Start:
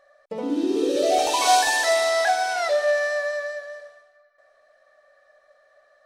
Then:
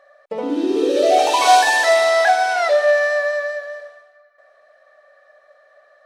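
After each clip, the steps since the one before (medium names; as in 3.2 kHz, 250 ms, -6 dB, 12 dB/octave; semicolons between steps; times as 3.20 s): tone controls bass -10 dB, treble -7 dB; trim +6.5 dB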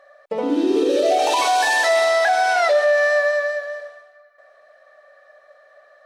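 peak limiter -11.5 dBFS, peak gain reduction 10 dB; trim +1.5 dB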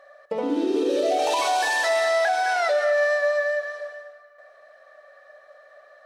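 compression 1.5:1, threshold -29 dBFS, peak gain reduction 5.5 dB; on a send at -10 dB: reverberation RT60 0.40 s, pre-delay 197 ms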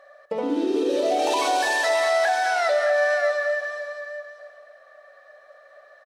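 delay 613 ms -10 dB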